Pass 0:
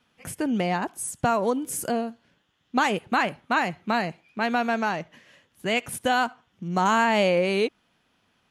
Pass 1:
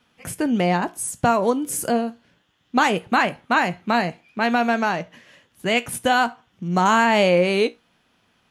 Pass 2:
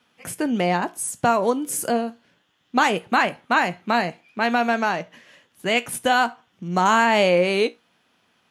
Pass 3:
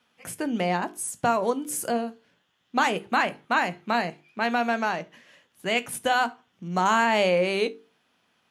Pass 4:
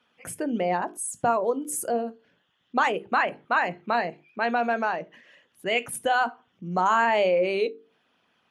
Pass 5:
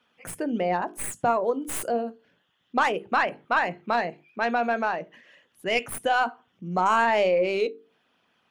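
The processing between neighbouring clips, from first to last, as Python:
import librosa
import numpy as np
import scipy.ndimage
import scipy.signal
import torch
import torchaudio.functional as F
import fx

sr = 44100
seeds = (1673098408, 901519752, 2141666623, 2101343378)

y1 = fx.comb_fb(x, sr, f0_hz=59.0, decay_s=0.2, harmonics='all', damping=0.0, mix_pct=50)
y1 = y1 * 10.0 ** (7.0 / 20.0)
y2 = fx.highpass(y1, sr, hz=200.0, slope=6)
y3 = fx.hum_notches(y2, sr, base_hz=50, count=9)
y3 = y3 * 10.0 ** (-4.0 / 20.0)
y4 = fx.envelope_sharpen(y3, sr, power=1.5)
y5 = fx.tracing_dist(y4, sr, depth_ms=0.051)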